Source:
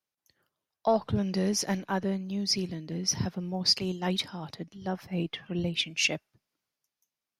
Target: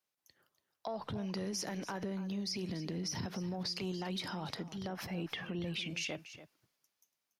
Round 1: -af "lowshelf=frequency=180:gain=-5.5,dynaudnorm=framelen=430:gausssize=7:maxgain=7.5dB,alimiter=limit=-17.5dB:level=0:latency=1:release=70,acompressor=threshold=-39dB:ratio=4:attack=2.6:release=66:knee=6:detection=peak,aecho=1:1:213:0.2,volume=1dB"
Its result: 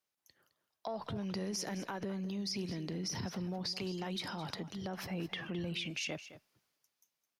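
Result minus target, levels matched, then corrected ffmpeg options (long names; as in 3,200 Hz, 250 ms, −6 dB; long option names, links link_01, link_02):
echo 73 ms early
-af "lowshelf=frequency=180:gain=-5.5,dynaudnorm=framelen=430:gausssize=7:maxgain=7.5dB,alimiter=limit=-17.5dB:level=0:latency=1:release=70,acompressor=threshold=-39dB:ratio=4:attack=2.6:release=66:knee=6:detection=peak,aecho=1:1:286:0.2,volume=1dB"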